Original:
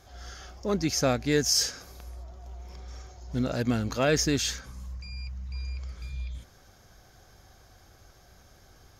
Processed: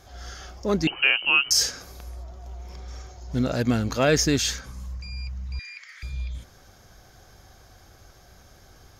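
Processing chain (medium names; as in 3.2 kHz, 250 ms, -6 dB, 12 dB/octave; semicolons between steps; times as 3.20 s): 0.87–1.51 s: frequency inversion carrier 3 kHz; 5.59–6.03 s: resonant high-pass 1.9 kHz, resonance Q 8.9; trim +4 dB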